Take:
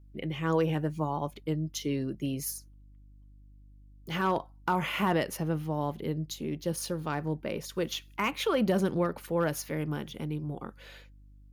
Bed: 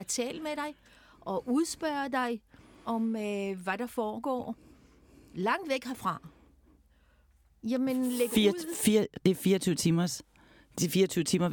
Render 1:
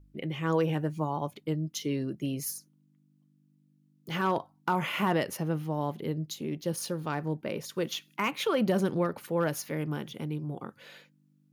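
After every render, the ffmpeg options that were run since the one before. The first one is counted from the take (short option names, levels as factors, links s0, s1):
-af "bandreject=f=50:t=h:w=4,bandreject=f=100:t=h:w=4"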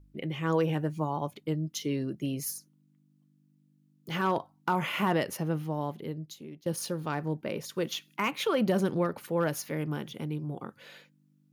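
-filter_complex "[0:a]asplit=2[s0][s1];[s0]atrim=end=6.66,asetpts=PTS-STARTPTS,afade=t=out:st=5.61:d=1.05:silence=0.177828[s2];[s1]atrim=start=6.66,asetpts=PTS-STARTPTS,afade=t=in:d=0.004:c=hsin:silence=0.177828[s3];[s2][s3]concat=n=2:v=0:a=1"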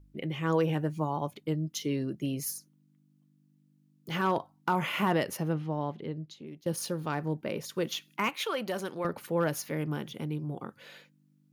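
-filter_complex "[0:a]asettb=1/sr,asplit=3[s0][s1][s2];[s0]atrim=end=5.534[s3];[s1]atrim=start=5.53:end=6.47,asetpts=PTS-STARTPTS,afade=t=in:d=0.004:c=qsin,afade=t=out:st=0.936:d=0.004:c=qsin,lowpass=4600[s4];[s2]atrim=start=6.466[s5];[s3][s4]acrossfade=d=0.004:c1=hsin:c2=qsin[s6];[s6][s5]acrossfade=d=0.004:c1=qsin:c2=hsin,asettb=1/sr,asplit=3[s7][s8][s9];[s7]atrim=end=8.294[s10];[s8]atrim=start=8.29:end=9.05,asetpts=PTS-STARTPTS,afade=t=in:d=0.004:c=qsin,afade=t=out:st=0.756:d=0.004:c=qsin,highpass=f=820:p=1[s11];[s9]atrim=start=9.046[s12];[s10][s11]acrossfade=d=0.004:c1=hsin:c2=qsin[s13];[s13][s12]acrossfade=d=0.004:c1=qsin:c2=hsin"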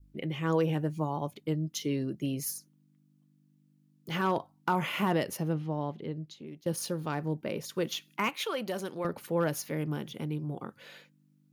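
-af "adynamicequalizer=threshold=0.00631:dfrequency=1400:dqfactor=0.71:tfrequency=1400:tqfactor=0.71:attack=5:release=100:ratio=0.375:range=2.5:mode=cutabove:tftype=bell"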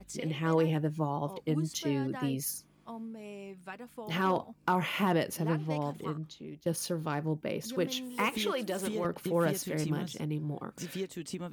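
-filter_complex "[1:a]volume=0.266[s0];[0:a][s0]amix=inputs=2:normalize=0"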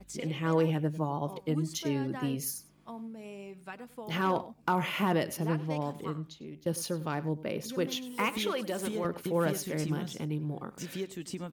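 -filter_complex "[0:a]asplit=2[s0][s1];[s1]adelay=99.13,volume=0.141,highshelf=f=4000:g=-2.23[s2];[s0][s2]amix=inputs=2:normalize=0"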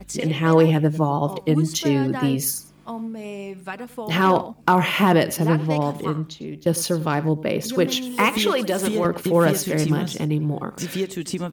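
-af "volume=3.76"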